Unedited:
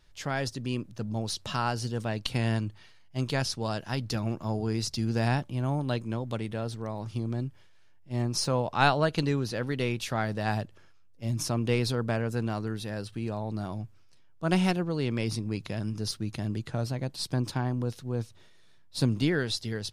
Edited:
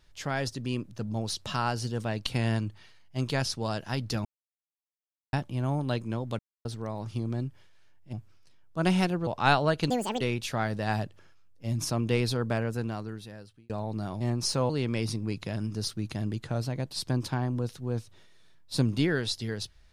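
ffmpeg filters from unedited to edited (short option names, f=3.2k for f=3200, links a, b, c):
-filter_complex "[0:a]asplit=12[a][b][c][d][e][f][g][h][i][j][k][l];[a]atrim=end=4.25,asetpts=PTS-STARTPTS,afade=t=out:st=4.246:d=0.004:c=hsin[m];[b]atrim=start=4.25:end=5.33,asetpts=PTS-STARTPTS,volume=0[n];[c]atrim=start=5.33:end=6.39,asetpts=PTS-STARTPTS,afade=t=in:d=0.004:c=hsin,afade=t=out:st=1.056:d=0.004:c=hsin[o];[d]atrim=start=6.39:end=6.65,asetpts=PTS-STARTPTS,volume=0[p];[e]atrim=start=6.65:end=8.132,asetpts=PTS-STARTPTS,afade=t=in:d=0.004:c=hsin[q];[f]atrim=start=13.788:end=14.932[r];[g]atrim=start=8.618:end=9.254[s];[h]atrim=start=9.25:end=9.79,asetpts=PTS-STARTPTS,asetrate=77616,aresample=44100[t];[i]atrim=start=9.786:end=13.28,asetpts=PTS-STARTPTS,afade=t=out:st=2.404:d=1.09[u];[j]atrim=start=13.28:end=13.792,asetpts=PTS-STARTPTS,afade=t=in:d=0.004:c=hsin[v];[k]atrim=start=8.128:end=8.622[w];[l]atrim=start=14.928[x];[m][n][o][p][q]concat=n=5:v=0:a=1[y];[y][r]acrossfade=d=0.004:c1=hsin:c2=hsin[z];[z][s]acrossfade=d=0.004:c1=hsin:c2=hsin[aa];[aa][t]acrossfade=d=0.004:c1=hsin:c2=hsin[ab];[u][v]concat=n=2:v=0:a=1[ac];[ab][ac]acrossfade=d=0.004:c1=hsin:c2=hsin[ad];[ad][w]acrossfade=d=0.004:c1=hsin:c2=hsin[ae];[ae][x]acrossfade=d=0.004:c1=hsin:c2=hsin"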